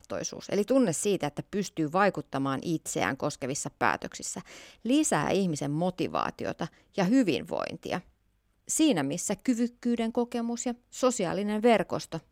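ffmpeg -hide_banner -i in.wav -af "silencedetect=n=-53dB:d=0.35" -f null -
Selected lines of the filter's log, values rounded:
silence_start: 8.09
silence_end: 8.68 | silence_duration: 0.58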